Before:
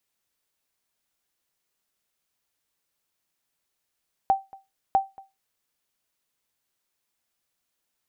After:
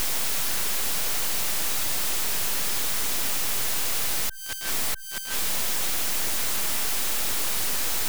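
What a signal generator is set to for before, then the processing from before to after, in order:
ping with an echo 778 Hz, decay 0.22 s, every 0.65 s, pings 2, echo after 0.23 s, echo −24 dB −12 dBFS
spike at every zero crossing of −20.5 dBFS
volume swells 158 ms
full-wave rectification

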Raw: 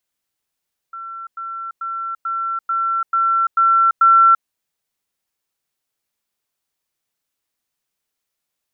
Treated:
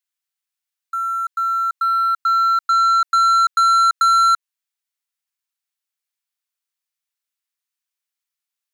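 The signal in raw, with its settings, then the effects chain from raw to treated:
level staircase 1,350 Hz −28.5 dBFS, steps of 3 dB, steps 8, 0.34 s 0.10 s
high-pass filter 1,200 Hz 12 dB per octave
downward compressor, threshold −17 dBFS
leveller curve on the samples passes 3

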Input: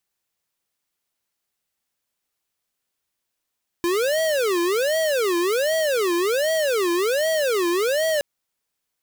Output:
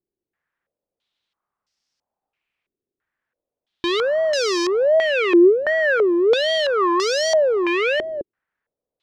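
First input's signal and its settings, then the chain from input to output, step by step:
siren wail 342–645 Hz 1.3 per second square −21 dBFS 4.37 s
low-pass on a step sequencer 3 Hz 370–5,300 Hz

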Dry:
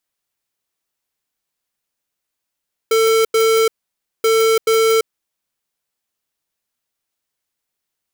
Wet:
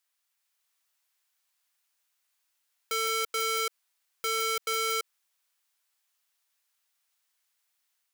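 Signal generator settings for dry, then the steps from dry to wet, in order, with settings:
beeps in groups square 447 Hz, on 0.34 s, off 0.09 s, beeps 2, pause 0.56 s, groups 2, −13.5 dBFS
high-pass filter 940 Hz 12 dB per octave
brickwall limiter −20 dBFS
automatic gain control gain up to 3 dB

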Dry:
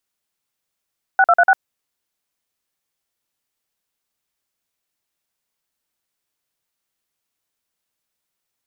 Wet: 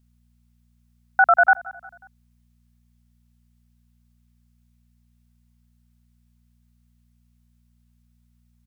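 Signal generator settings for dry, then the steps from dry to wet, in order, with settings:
touch tones "6236", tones 51 ms, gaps 46 ms, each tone −11.5 dBFS
parametric band 430 Hz −10.5 dB 0.9 octaves
hum with harmonics 60 Hz, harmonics 4, −62 dBFS −5 dB per octave
repeating echo 180 ms, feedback 48%, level −21 dB

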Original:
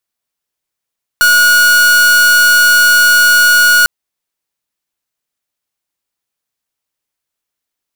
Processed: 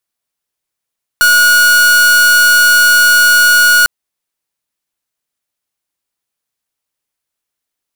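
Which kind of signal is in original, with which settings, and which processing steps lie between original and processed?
pulse wave 1,450 Hz, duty 45% −7.5 dBFS 2.65 s
parametric band 9,900 Hz +2.5 dB 0.29 octaves

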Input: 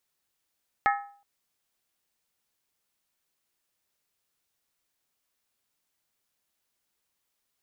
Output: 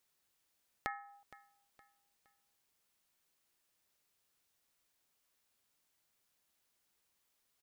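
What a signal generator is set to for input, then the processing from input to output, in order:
struck skin length 0.37 s, lowest mode 807 Hz, decay 0.48 s, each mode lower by 3 dB, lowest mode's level −19 dB
dynamic equaliser 570 Hz, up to −7 dB, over −40 dBFS, Q 0.76
downward compressor 3 to 1, threshold −41 dBFS
repeating echo 466 ms, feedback 39%, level −19 dB

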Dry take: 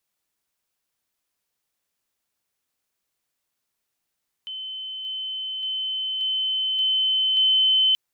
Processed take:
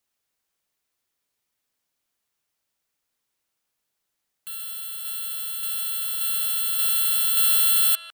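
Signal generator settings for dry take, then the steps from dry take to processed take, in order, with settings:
level staircase 3,060 Hz −30.5 dBFS, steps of 3 dB, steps 6, 0.58 s 0.00 s
samples in bit-reversed order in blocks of 128 samples
far-end echo of a speakerphone 150 ms, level −10 dB

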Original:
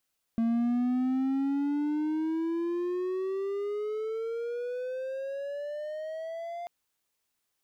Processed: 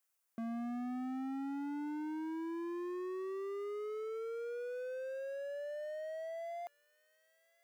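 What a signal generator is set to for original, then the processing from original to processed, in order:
pitch glide with a swell triangle, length 6.29 s, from 227 Hz, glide +19.5 semitones, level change −11.5 dB, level −21.5 dB
high-pass filter 1,000 Hz 6 dB per octave
parametric band 3,700 Hz −8.5 dB 1.3 octaves
delay with a high-pass on its return 1,101 ms, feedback 38%, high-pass 2,200 Hz, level −13.5 dB

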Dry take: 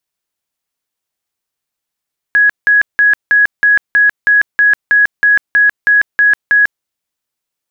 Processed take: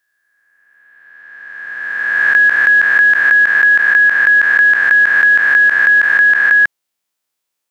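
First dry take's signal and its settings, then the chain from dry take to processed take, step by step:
tone bursts 1,670 Hz, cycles 243, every 0.32 s, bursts 14, −5.5 dBFS
peak hold with a rise ahead of every peak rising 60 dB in 2.31 s
low-shelf EQ 180 Hz −10 dB

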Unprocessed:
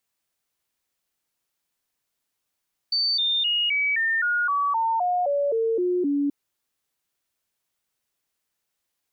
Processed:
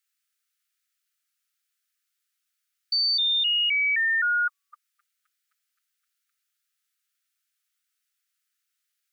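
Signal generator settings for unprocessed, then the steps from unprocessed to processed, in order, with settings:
stepped sweep 4,560 Hz down, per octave 3, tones 13, 0.26 s, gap 0.00 s −20 dBFS
linear-phase brick-wall high-pass 1,200 Hz

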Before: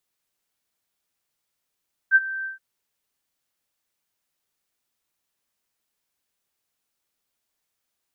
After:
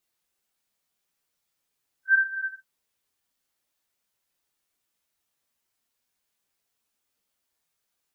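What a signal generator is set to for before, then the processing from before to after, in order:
note with an ADSR envelope sine 1,560 Hz, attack 45 ms, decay 36 ms, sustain −17.5 dB, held 0.34 s, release 134 ms −9.5 dBFS
random phases in long frames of 100 ms

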